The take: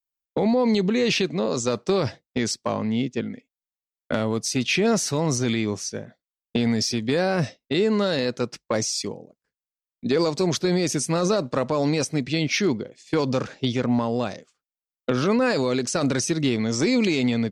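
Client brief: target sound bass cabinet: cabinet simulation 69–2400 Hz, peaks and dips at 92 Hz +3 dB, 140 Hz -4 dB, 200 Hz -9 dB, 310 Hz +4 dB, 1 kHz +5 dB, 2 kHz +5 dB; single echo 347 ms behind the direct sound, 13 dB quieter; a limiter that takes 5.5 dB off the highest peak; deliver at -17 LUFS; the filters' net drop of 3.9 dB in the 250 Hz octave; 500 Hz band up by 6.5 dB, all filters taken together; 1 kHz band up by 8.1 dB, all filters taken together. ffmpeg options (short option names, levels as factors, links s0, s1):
-af "equalizer=f=250:t=o:g=-8,equalizer=f=500:t=o:g=8.5,equalizer=f=1000:t=o:g=4.5,alimiter=limit=0.266:level=0:latency=1,highpass=f=69:w=0.5412,highpass=f=69:w=1.3066,equalizer=f=92:t=q:w=4:g=3,equalizer=f=140:t=q:w=4:g=-4,equalizer=f=200:t=q:w=4:g=-9,equalizer=f=310:t=q:w=4:g=4,equalizer=f=1000:t=q:w=4:g=5,equalizer=f=2000:t=q:w=4:g=5,lowpass=f=2400:w=0.5412,lowpass=f=2400:w=1.3066,aecho=1:1:347:0.224,volume=1.88"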